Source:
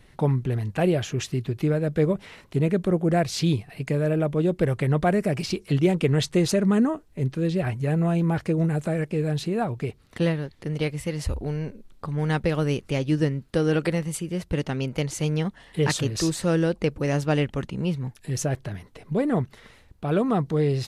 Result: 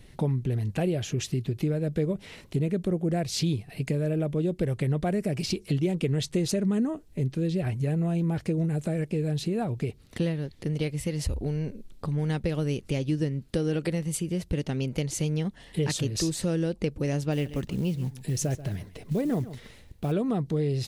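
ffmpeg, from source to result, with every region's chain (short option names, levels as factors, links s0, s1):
-filter_complex "[0:a]asettb=1/sr,asplit=3[s0][s1][s2];[s0]atrim=end=17.324[s3];[s1]atrim=start=17.32:end=20.12,asetpts=PTS-STARTPTS,afade=t=in:d=0.004:c=qsin,afade=t=out:st=2.796:d=0.004:c=qsin,acrusher=bits=7:mode=log:mix=0:aa=0.000001,aecho=1:1:135:0.141,atrim=end_sample=123480[s4];[s2]atrim=start=20.116[s5];[s3][s4]acrossfade=d=0.004:c1=hsin:c2=qsin[s6];[s6][s5]acrossfade=d=0.004:c1=qsin:c2=hsin,equalizer=f=1200:w=0.8:g=-8.5,acompressor=threshold=0.0316:ratio=2.5,volume=1.5"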